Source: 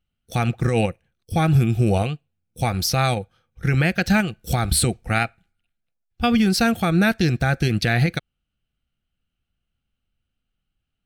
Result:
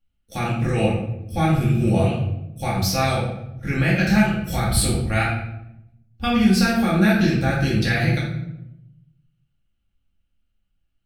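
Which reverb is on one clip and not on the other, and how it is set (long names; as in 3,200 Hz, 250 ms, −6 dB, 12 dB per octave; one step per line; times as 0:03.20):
rectangular room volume 220 cubic metres, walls mixed, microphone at 2.3 metres
level −7.5 dB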